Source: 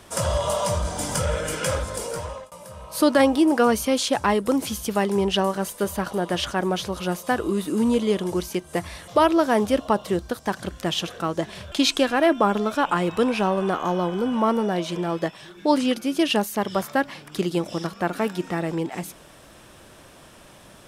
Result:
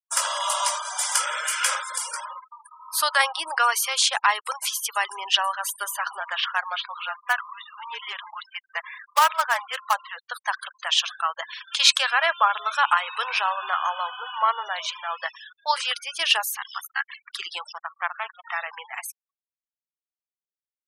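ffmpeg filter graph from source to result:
ffmpeg -i in.wav -filter_complex "[0:a]asettb=1/sr,asplit=3[link_01][link_02][link_03];[link_01]atrim=end=6.204[link_04];[link_02]atrim=start=6.2:end=10.17,asetpts=PTS-STARTPTS,afade=type=in:duration=0.004:curve=qsin,afade=type=out:start_time=3.966:duration=0.004:curve=qsin,afreqshift=-27,highpass=540,lowpass=2900,acrusher=bits=3:mode=log:mix=0:aa=0.000001[link_05];[link_03]atrim=start=10.166[link_06];[link_04][link_05]acrossfade=duration=0.004:curve1=hsin:curve2=qsin[link_07];[link_07][link_06]acrossfade=duration=0.004:curve1=qsin:curve2=hsin,asettb=1/sr,asplit=3[link_08][link_09][link_10];[link_08]atrim=end=16.574[link_11];[link_09]atrim=start=16.57:end=17.21,asetpts=PTS-STARTPTS,afade=type=in:duration=0.004:curve=qsin,afade=type=out:start_time=0.636:duration=0.004:curve=qsin,highpass=1400,aeval=exprs='val(0)*sin(2*PI*35*n/s)':channel_layout=same[link_12];[link_10]atrim=start=17.206[link_13];[link_11][link_12]acrossfade=duration=0.004:curve1=hsin:curve2=qsin[link_14];[link_14][link_13]acrossfade=duration=0.004:curve1=qsin:curve2=hsin,asettb=1/sr,asplit=3[link_15][link_16][link_17];[link_15]atrim=end=17.724[link_18];[link_16]atrim=start=17.72:end=18.45,asetpts=PTS-STARTPTS,afade=type=in:duration=0.004:curve=qsin,afade=type=out:start_time=0.726:duration=0.004:curve=qsin,lowpass=frequency=2400:poles=1,aeval=exprs='max(val(0),0)':channel_layout=same[link_19];[link_17]atrim=start=18.446[link_20];[link_18][link_19]acrossfade=duration=0.004:curve1=hsin:curve2=qsin[link_21];[link_21][link_20]acrossfade=duration=0.004:curve1=qsin:curve2=hsin,highpass=frequency=1000:width=0.5412,highpass=frequency=1000:width=1.3066,afftfilt=real='re*gte(hypot(re,im),0.0141)':imag='im*gte(hypot(re,im),0.0141)':win_size=1024:overlap=0.75,agate=range=-33dB:threshold=-52dB:ratio=3:detection=peak,volume=6dB" out.wav

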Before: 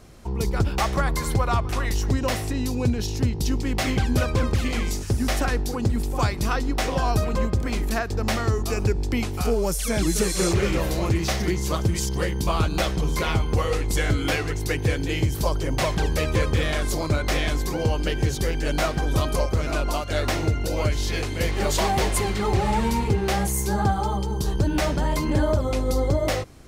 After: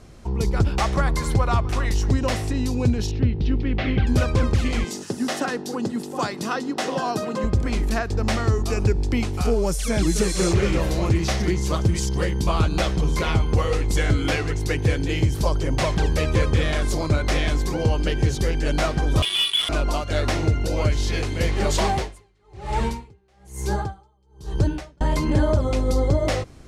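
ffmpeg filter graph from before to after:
ffmpeg -i in.wav -filter_complex "[0:a]asettb=1/sr,asplit=3[link_01][link_02][link_03];[link_01]atrim=end=3.114[link_04];[link_02]atrim=start=3.11:end=4.07,asetpts=PTS-STARTPTS,afade=type=in:duration=0.004:curve=qsin,afade=type=out:start_time=0.956:duration=0.004:curve=qsin,lowpass=frequency=3400:width=0.5412,lowpass=frequency=3400:width=1.3066,equalizer=frequency=950:width_type=o:width=0.72:gain=-7.5[link_05];[link_03]atrim=start=4.066[link_06];[link_04][link_05]acrossfade=duration=0.004:curve1=hsin:curve2=qsin[link_07];[link_07][link_06]acrossfade=duration=0.004:curve1=qsin:curve2=hsin,asettb=1/sr,asplit=3[link_08][link_09][link_10];[link_08]atrim=end=4.844[link_11];[link_09]atrim=start=4.84:end=7.44,asetpts=PTS-STARTPTS,afade=type=in:duration=0.004:curve=qsin,afade=type=out:start_time=2.596:duration=0.004:curve=qsin,highpass=frequency=180:width=0.5412,highpass=frequency=180:width=1.3066,bandreject=frequency=2300:width=8.1[link_12];[link_10]atrim=start=7.436[link_13];[link_11][link_12]acrossfade=duration=0.004:curve1=hsin:curve2=qsin[link_14];[link_14][link_13]acrossfade=duration=0.004:curve1=qsin:curve2=hsin,asettb=1/sr,asplit=3[link_15][link_16][link_17];[link_15]atrim=end=19.224[link_18];[link_16]atrim=start=19.22:end=19.69,asetpts=PTS-STARTPTS,afade=type=in:duration=0.004:curve=qsin,afade=type=out:start_time=0.466:duration=0.004:curve=qsin,lowpass=frequency=3000:width_type=q:width=0.5098,lowpass=frequency=3000:width_type=q:width=0.6013,lowpass=frequency=3000:width_type=q:width=0.9,lowpass=frequency=3000:width_type=q:width=2.563,afreqshift=-3500,acrusher=bits=3:mix=0:aa=0.5[link_19];[link_17]atrim=start=19.686[link_20];[link_18][link_19]acrossfade=duration=0.004:curve1=hsin:curve2=qsin[link_21];[link_21][link_20]acrossfade=duration=0.004:curve1=qsin:curve2=hsin,asettb=1/sr,asplit=3[link_22][link_23][link_24];[link_22]atrim=end=21.904[link_25];[link_23]atrim=start=21.9:end=25.01,asetpts=PTS-STARTPTS,afade=type=in:duration=0.004:curve=qsin,afade=type=out:start_time=3.106:duration=0.004:curve=qsin,bandreject=frequency=210:width=5.3,aeval=exprs='val(0)*pow(10,-40*(0.5-0.5*cos(2*PI*1.1*n/s))/20)':channel_layout=same[link_26];[link_24]atrim=start=25.006[link_27];[link_25][link_26]acrossfade=duration=0.004:curve1=hsin:curve2=qsin[link_28];[link_28][link_27]acrossfade=duration=0.004:curve1=qsin:curve2=hsin,lowpass=9700,lowshelf=frequency=340:gain=3" out.wav

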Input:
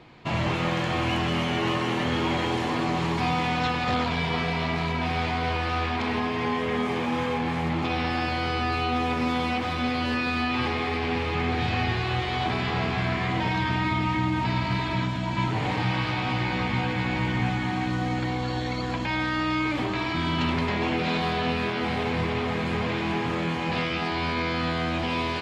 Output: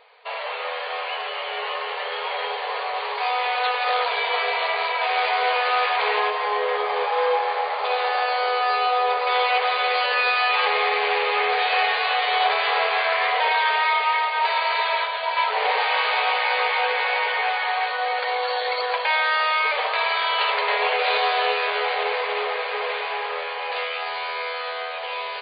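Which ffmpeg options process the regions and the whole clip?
ffmpeg -i in.wav -filter_complex "[0:a]asettb=1/sr,asplit=3[link_01][link_02][link_03];[link_01]atrim=end=6.304[link_04];[link_02]atrim=start=6.3:end=9.27,asetpts=PTS-STARTPTS,afade=type=in:duration=0.004:curve=qsin,afade=type=out:start_time=2.966:duration=0.004:curve=qsin,equalizer=frequency=2500:width_type=o:width=1.3:gain=-6.5,bandreject=frequency=60:width_type=h:width=6,bandreject=frequency=120:width_type=h:width=6,bandreject=frequency=180:width_type=h:width=6,bandreject=frequency=240:width_type=h:width=6,bandreject=frequency=300:width_type=h:width=6,bandreject=frequency=360:width_type=h:width=6,bandreject=frequency=420:width_type=h:width=6,bandreject=frequency=480:width_type=h:width=6,bandreject=frequency=540:width_type=h:width=6,asplit=2[link_05][link_06];[link_06]adelay=34,volume=-11.5dB[link_07];[link_05][link_07]amix=inputs=2:normalize=0,atrim=end_sample=130977[link_08];[link_03]atrim=start=9.266[link_09];[link_04][link_08]acrossfade=duration=0.004:curve1=hsin:curve2=qsin[link_10];[link_10][link_09]acrossfade=duration=0.004:curve1=qsin:curve2=hsin,afftfilt=real='re*between(b*sr/4096,410,4800)':imag='im*between(b*sr/4096,410,4800)':win_size=4096:overlap=0.75,dynaudnorm=framelen=740:gausssize=11:maxgain=8.5dB" out.wav

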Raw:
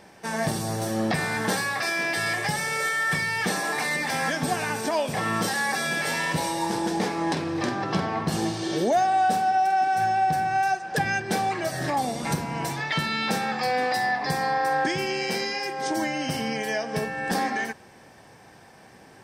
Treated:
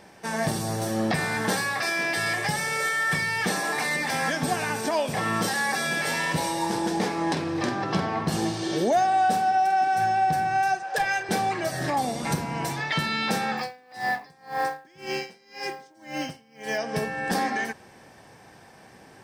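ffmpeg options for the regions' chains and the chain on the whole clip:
ffmpeg -i in.wav -filter_complex "[0:a]asettb=1/sr,asplit=3[link_01][link_02][link_03];[link_01]atrim=end=10.834[link_04];[link_02]atrim=start=10.83:end=11.29,asetpts=PTS-STARTPTS,afade=type=in:duration=0.004:curve=qsin,afade=type=out:start_time=0.456:duration=0.004:curve=qsin,lowshelf=frequency=370:width_type=q:width=1.5:gain=-13.5,asoftclip=type=hard:threshold=-19.5dB,asplit=2[link_05][link_06];[link_06]adelay=34,volume=-10dB[link_07];[link_05][link_07]amix=inputs=2:normalize=0,atrim=end_sample=20286[link_08];[link_03]atrim=start=11.286[link_09];[link_04][link_08]acrossfade=duration=0.004:curve1=hsin:curve2=qsin[link_10];[link_10][link_09]acrossfade=duration=0.004:curve1=qsin:curve2=hsin,asettb=1/sr,asplit=3[link_11][link_12][link_13];[link_11]atrim=end=13.574[link_14];[link_12]atrim=start=13.57:end=16.78,asetpts=PTS-STARTPTS,afade=type=in:duration=0.004:curve=qsin,afade=type=out:start_time=3.206:duration=0.004:curve=qsin,lowpass=10000,acrusher=bits=6:mode=log:mix=0:aa=0.000001,aeval=exprs='val(0)*pow(10,-31*(0.5-0.5*cos(2*PI*1.9*n/s))/20)':channel_layout=same[link_15];[link_13]atrim=start=16.776[link_16];[link_14][link_15]acrossfade=duration=0.004:curve1=hsin:curve2=qsin[link_17];[link_17][link_16]acrossfade=duration=0.004:curve1=qsin:curve2=hsin" out.wav

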